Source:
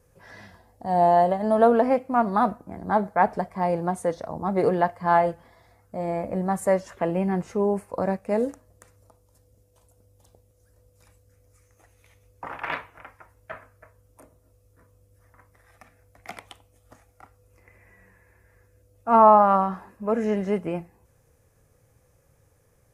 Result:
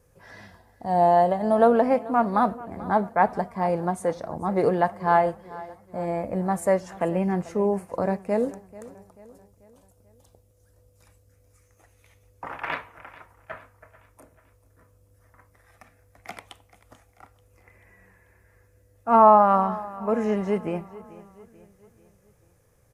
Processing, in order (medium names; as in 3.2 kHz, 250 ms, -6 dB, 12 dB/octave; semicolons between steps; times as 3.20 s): feedback delay 438 ms, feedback 48%, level -19 dB